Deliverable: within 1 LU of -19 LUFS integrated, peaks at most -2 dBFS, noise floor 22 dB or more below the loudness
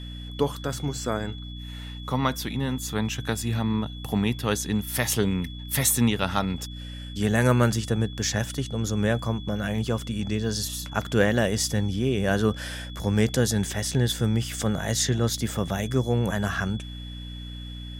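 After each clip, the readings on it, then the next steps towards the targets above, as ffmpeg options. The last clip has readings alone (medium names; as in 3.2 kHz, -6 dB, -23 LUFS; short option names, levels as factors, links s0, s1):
hum 60 Hz; highest harmonic 300 Hz; hum level -36 dBFS; steady tone 3.4 kHz; tone level -43 dBFS; loudness -26.0 LUFS; peak level -7.0 dBFS; loudness target -19.0 LUFS
-> -af "bandreject=f=60:t=h:w=4,bandreject=f=120:t=h:w=4,bandreject=f=180:t=h:w=4,bandreject=f=240:t=h:w=4,bandreject=f=300:t=h:w=4"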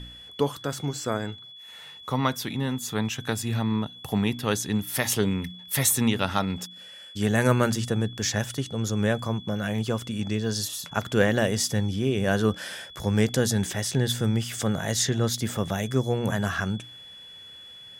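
hum not found; steady tone 3.4 kHz; tone level -43 dBFS
-> -af "bandreject=f=3400:w=30"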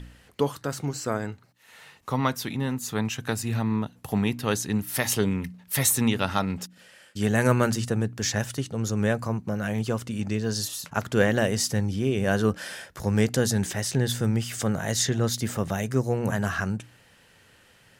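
steady tone not found; loudness -26.5 LUFS; peak level -6.0 dBFS; loudness target -19.0 LUFS
-> -af "volume=2.37,alimiter=limit=0.794:level=0:latency=1"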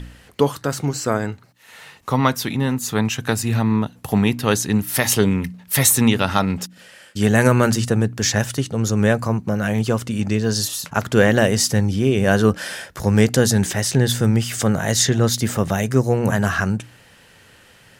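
loudness -19.0 LUFS; peak level -2.0 dBFS; noise floor -50 dBFS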